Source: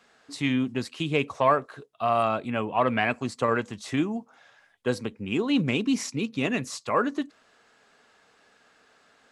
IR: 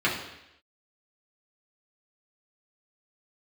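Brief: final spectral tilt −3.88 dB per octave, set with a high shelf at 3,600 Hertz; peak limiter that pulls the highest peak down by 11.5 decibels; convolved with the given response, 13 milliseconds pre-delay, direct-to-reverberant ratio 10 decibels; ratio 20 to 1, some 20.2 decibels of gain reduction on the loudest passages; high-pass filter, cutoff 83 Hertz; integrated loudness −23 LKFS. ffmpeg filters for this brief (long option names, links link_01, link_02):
-filter_complex "[0:a]highpass=83,highshelf=frequency=3600:gain=6.5,acompressor=threshold=-35dB:ratio=20,alimiter=level_in=8dB:limit=-24dB:level=0:latency=1,volume=-8dB,asplit=2[link_01][link_02];[1:a]atrim=start_sample=2205,adelay=13[link_03];[link_02][link_03]afir=irnorm=-1:irlink=0,volume=-24.5dB[link_04];[link_01][link_04]amix=inputs=2:normalize=0,volume=19.5dB"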